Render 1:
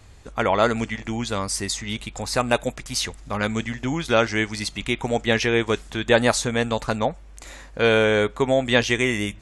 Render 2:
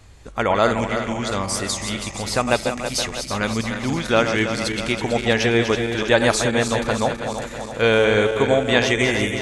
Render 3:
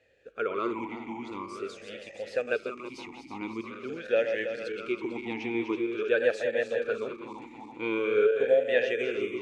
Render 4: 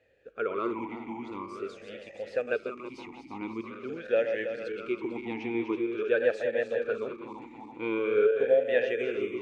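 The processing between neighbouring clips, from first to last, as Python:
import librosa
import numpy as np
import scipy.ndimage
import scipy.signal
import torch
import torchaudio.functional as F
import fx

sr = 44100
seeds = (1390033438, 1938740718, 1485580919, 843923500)

y1 = fx.reverse_delay_fb(x, sr, ms=163, feedback_pct=76, wet_db=-7.5)
y1 = F.gain(torch.from_numpy(y1), 1.0).numpy()
y2 = fx.vowel_sweep(y1, sr, vowels='e-u', hz=0.46)
y3 = fx.high_shelf(y2, sr, hz=3300.0, db=-9.5)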